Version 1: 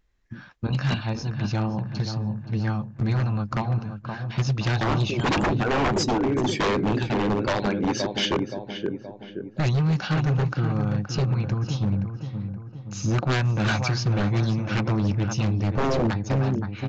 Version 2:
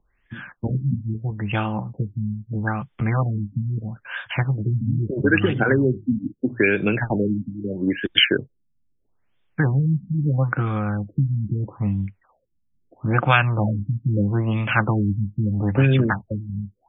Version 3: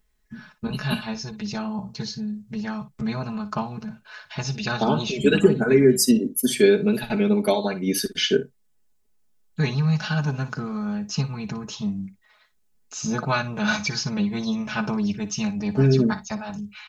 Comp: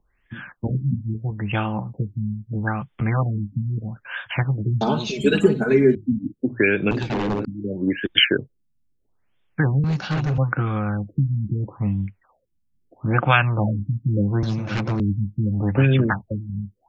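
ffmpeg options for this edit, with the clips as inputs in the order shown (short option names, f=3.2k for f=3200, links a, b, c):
-filter_complex "[0:a]asplit=3[a][b][c];[1:a]asplit=5[d][e][f][g][h];[d]atrim=end=4.812[i];[2:a]atrim=start=4.808:end=5.952[j];[e]atrim=start=5.948:end=6.912[k];[a]atrim=start=6.908:end=7.452[l];[f]atrim=start=7.448:end=9.842[m];[b]atrim=start=9.838:end=10.382[n];[g]atrim=start=10.378:end=14.432[o];[c]atrim=start=14.428:end=15.002[p];[h]atrim=start=14.998[q];[i][j]acrossfade=d=0.004:c1=hsin:c2=hsin[r];[r][k]acrossfade=d=0.004:c1=hsin:c2=hsin[s];[s][l]acrossfade=d=0.004:c1=hsin:c2=hsin[t];[t][m]acrossfade=d=0.004:c1=hsin:c2=hsin[u];[u][n]acrossfade=d=0.004:c1=hsin:c2=hsin[v];[v][o]acrossfade=d=0.004:c1=hsin:c2=hsin[w];[w][p]acrossfade=d=0.004:c1=hsin:c2=hsin[x];[x][q]acrossfade=d=0.004:c1=hsin:c2=hsin"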